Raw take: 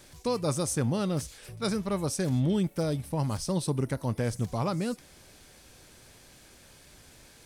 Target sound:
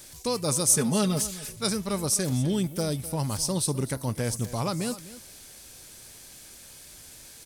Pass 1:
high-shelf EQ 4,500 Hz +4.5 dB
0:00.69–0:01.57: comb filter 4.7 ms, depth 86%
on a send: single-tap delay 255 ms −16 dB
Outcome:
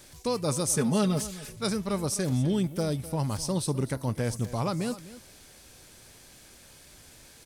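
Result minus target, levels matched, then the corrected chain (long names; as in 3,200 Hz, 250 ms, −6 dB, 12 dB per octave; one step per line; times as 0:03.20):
8,000 Hz band −4.5 dB
high-shelf EQ 4,500 Hz +13.5 dB
0:00.69–0:01.57: comb filter 4.7 ms, depth 86%
on a send: single-tap delay 255 ms −16 dB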